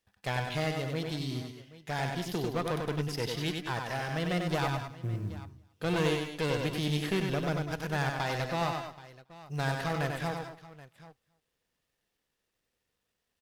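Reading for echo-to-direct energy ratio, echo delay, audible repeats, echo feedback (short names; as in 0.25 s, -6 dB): -3.0 dB, 95 ms, 6, no steady repeat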